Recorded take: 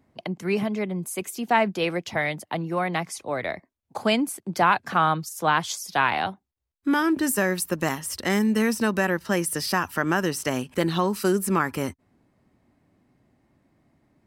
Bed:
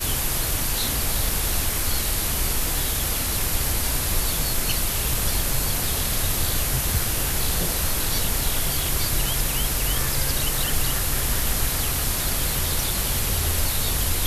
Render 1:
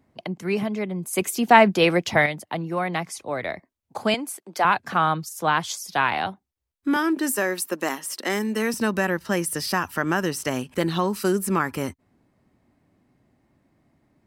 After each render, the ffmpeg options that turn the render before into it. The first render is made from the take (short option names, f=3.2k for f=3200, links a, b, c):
-filter_complex "[0:a]asettb=1/sr,asplit=3[a][b][c];[a]atrim=end=4.144[d];[b]atrim=start=4.14:end=4.65,asetpts=PTS-STARTPTS,afade=t=in:d=0.004:c=qsin,afade=t=out:st=0.506:d=0.004:c=qsin,highpass=430[e];[c]atrim=start=4.646[f];[d][e]acrossfade=d=0.004:c1=hsin:c2=qsin[g];[g][f]acrossfade=d=0.004:c1=qsin:c2=hsin,asettb=1/sr,asplit=3[h][i][j];[h]atrim=end=6.964[k];[i]atrim=start=6.96:end=8.74,asetpts=PTS-STARTPTS,afade=t=in:d=0.004:c=qsin,afade=t=out:st=1.776:d=0.004:c=qsin,highpass=f=240:w=0.5412,highpass=f=240:w=1.3066[l];[j]atrim=start=8.736[m];[k][l]acrossfade=d=0.004:c1=hsin:c2=qsin[n];[n][m]acrossfade=d=0.004:c1=qsin:c2=hsin,asplit=3[o][p][q];[o]atrim=end=1.132[r];[p]atrim=start=1.128:end=2.262,asetpts=PTS-STARTPTS,volume=7dB[s];[q]atrim=start=2.258[t];[r][s]acrossfade=d=0.004:c1=hsin:c2=hsin[u];[u][t]acrossfade=d=0.004:c1=hsin:c2=hsin"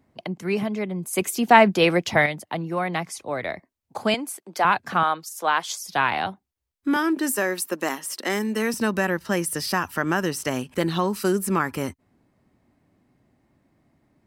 -filter_complex "[0:a]asettb=1/sr,asplit=3[a][b][c];[a]atrim=end=5.034[d];[b]atrim=start=5.03:end=5.87,asetpts=PTS-STARTPTS,afade=t=in:d=0.004:c=qsin,afade=t=out:st=0.836:d=0.004:c=qsin,highpass=410[e];[c]atrim=start=5.866[f];[d][e]acrossfade=d=0.004:c1=hsin:c2=qsin[g];[g][f]acrossfade=d=0.004:c1=qsin:c2=hsin"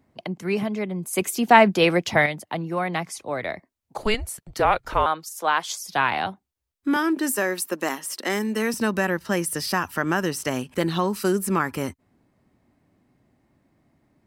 -filter_complex "[0:a]asettb=1/sr,asplit=3[a][b][c];[a]atrim=end=3.984[d];[b]atrim=start=3.98:end=5.06,asetpts=PTS-STARTPTS,afade=t=in:d=0.004:c=qsin,afade=t=out:st=1.076:d=0.004:c=qsin,afreqshift=-220[e];[c]atrim=start=5.056[f];[d][e]acrossfade=d=0.004:c1=hsin:c2=qsin[g];[g][f]acrossfade=d=0.004:c1=qsin:c2=hsin"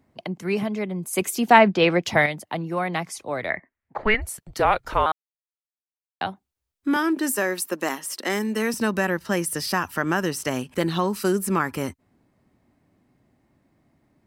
-filter_complex "[0:a]asettb=1/sr,asplit=3[a][b][c];[a]atrim=end=1.584[d];[b]atrim=start=1.58:end=2.03,asetpts=PTS-STARTPTS,afade=t=in:d=0.004:c=qsin,afade=t=out:st=0.446:d=0.004:c=qsin,lowpass=4.5k[e];[c]atrim=start=2.026[f];[d][e]acrossfade=d=0.004:c1=hsin:c2=qsin[g];[g][f]acrossfade=d=0.004:c1=qsin:c2=hsin,asettb=1/sr,asplit=3[h][i][j];[h]atrim=end=3.504[k];[i]atrim=start=3.5:end=4.22,asetpts=PTS-STARTPTS,afade=t=in:d=0.004:c=qsin,afade=t=out:st=0.716:d=0.004:c=qsin,lowpass=f=1.9k:t=q:w=4.1[l];[j]atrim=start=4.216[m];[k][l]acrossfade=d=0.004:c1=hsin:c2=qsin[n];[n][m]acrossfade=d=0.004:c1=qsin:c2=hsin,asplit=3[o][p][q];[o]atrim=end=5.12,asetpts=PTS-STARTPTS,afade=t=out:st=5.116:d=0.004:c=hsin[r];[p]atrim=start=5.12:end=6.21,asetpts=PTS-STARTPTS,volume=0[s];[q]atrim=start=6.21,asetpts=PTS-STARTPTS,afade=t=in:d=0.004:c=hsin[t];[r][s][t]concat=n=3:v=0:a=1"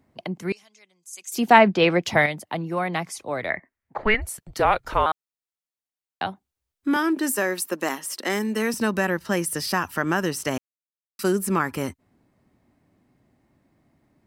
-filter_complex "[0:a]asettb=1/sr,asplit=3[a][b][c];[a]atrim=end=0.524[d];[b]atrim=start=0.52:end=1.32,asetpts=PTS-STARTPTS,afade=t=in:d=0.004:c=qsin,afade=t=out:st=0.796:d=0.004:c=qsin,bandpass=f=6.4k:t=q:w=2.9[e];[c]atrim=start=1.316[f];[d][e]acrossfade=d=0.004:c1=hsin:c2=qsin[g];[g][f]acrossfade=d=0.004:c1=qsin:c2=hsin,asplit=3[h][i][j];[h]atrim=end=10.58,asetpts=PTS-STARTPTS,afade=t=out:st=10.576:d=0.004:c=hsin[k];[i]atrim=start=10.58:end=11.19,asetpts=PTS-STARTPTS,volume=0[l];[j]atrim=start=11.19,asetpts=PTS-STARTPTS,afade=t=in:d=0.004:c=hsin[m];[k][l][m]concat=n=3:v=0:a=1"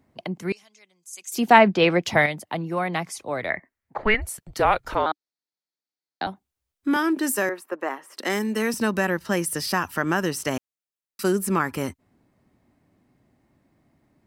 -filter_complex "[0:a]asettb=1/sr,asplit=3[a][b][c];[a]atrim=end=4.954[d];[b]atrim=start=4.95:end=6.27,asetpts=PTS-STARTPTS,afade=t=in:d=0.004:c=qsin,afade=t=out:st=1.316:d=0.004:c=qsin,highpass=140,equalizer=f=300:t=q:w=4:g=6,equalizer=f=1.1k:t=q:w=4:g=-6,equalizer=f=2.8k:t=q:w=4:g=-9,equalizer=f=4.4k:t=q:w=4:g=7,lowpass=f=6.2k:w=0.5412,lowpass=f=6.2k:w=1.3066[e];[c]atrim=start=6.266[f];[d][e]acrossfade=d=0.004:c1=hsin:c2=qsin[g];[g][f]acrossfade=d=0.004:c1=qsin:c2=hsin,asettb=1/sr,asplit=3[h][i][j];[h]atrim=end=7.494[k];[i]atrim=start=7.49:end=8.17,asetpts=PTS-STARTPTS,afade=t=in:d=0.004:c=qsin,afade=t=out:st=0.676:d=0.004:c=qsin,acrossover=split=310 2100:gain=0.112 1 0.112[l][m][n];[l][m][n]amix=inputs=3:normalize=0[o];[j]atrim=start=8.166[p];[k][o]acrossfade=d=0.004:c1=hsin:c2=qsin[q];[q][p]acrossfade=d=0.004:c1=qsin:c2=hsin"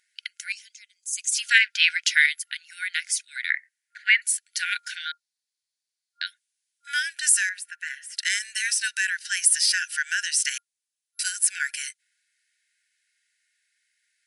-af "afftfilt=real='re*between(b*sr/4096,1400,11000)':imag='im*between(b*sr/4096,1400,11000)':win_size=4096:overlap=0.75,highshelf=f=3k:g=12"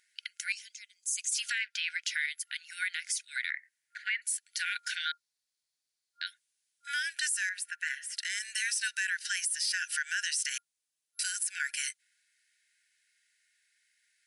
-af "acompressor=threshold=-27dB:ratio=5,alimiter=limit=-21dB:level=0:latency=1:release=26"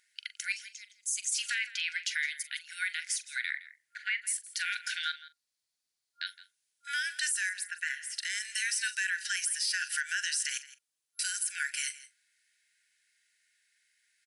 -filter_complex "[0:a]asplit=2[a][b];[b]adelay=42,volume=-14dB[c];[a][c]amix=inputs=2:normalize=0,aecho=1:1:165:0.133"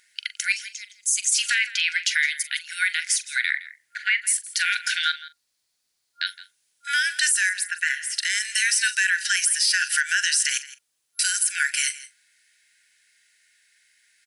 -af "volume=10.5dB"